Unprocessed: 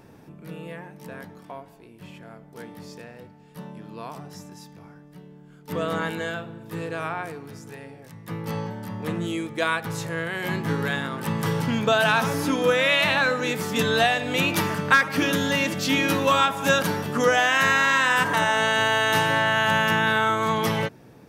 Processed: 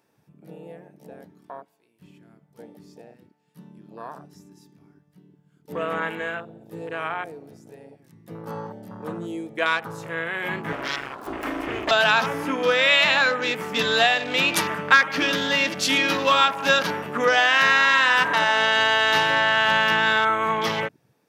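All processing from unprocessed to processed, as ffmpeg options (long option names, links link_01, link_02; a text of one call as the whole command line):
ffmpeg -i in.wav -filter_complex "[0:a]asettb=1/sr,asplit=3[link_01][link_02][link_03];[link_01]atrim=end=10.724[link_04];[link_02]atrim=start=10.72:end=11.91,asetpts=PTS-STARTPTS,afade=type=in:duration=0.004:curve=qsin,afade=type=out:start_time=1.186:duration=0.004:curve=qsin,asubboost=boost=8.5:cutoff=160,aeval=exprs='abs(val(0))':channel_layout=same[link_05];[link_03]atrim=start=11.906[link_06];[link_04][link_05]acrossfade=duration=0.004:curve1=hsin:curve2=qsin[link_07];[link_07][link_06]acrossfade=duration=0.004:curve1=qsin:curve2=hsin,highshelf=frequency=3100:gain=5.5,afwtdn=0.0224,highpass=frequency=420:poles=1,volume=1.5dB" out.wav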